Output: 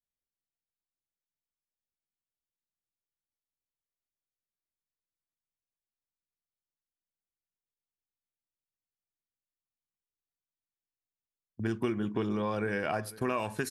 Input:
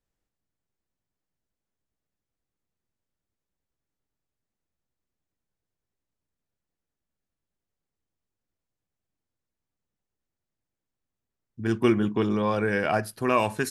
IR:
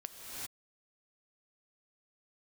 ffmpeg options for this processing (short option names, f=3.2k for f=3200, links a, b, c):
-af "agate=range=-18dB:threshold=-42dB:ratio=16:detection=peak,acompressor=threshold=-28dB:ratio=6,aecho=1:1:499:0.106"